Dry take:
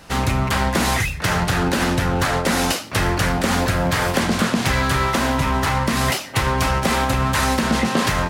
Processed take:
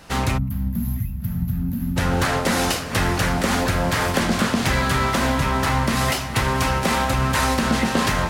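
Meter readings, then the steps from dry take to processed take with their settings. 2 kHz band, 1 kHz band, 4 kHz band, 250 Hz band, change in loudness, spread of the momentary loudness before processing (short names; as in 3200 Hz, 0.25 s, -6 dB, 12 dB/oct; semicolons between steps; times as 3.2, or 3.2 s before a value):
-2.0 dB, -2.0 dB, -2.0 dB, -1.5 dB, -1.5 dB, 2 LU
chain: diffused feedback echo 0.514 s, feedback 62%, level -12 dB; spectral gain 0.38–1.97, 260–11000 Hz -28 dB; gain -1.5 dB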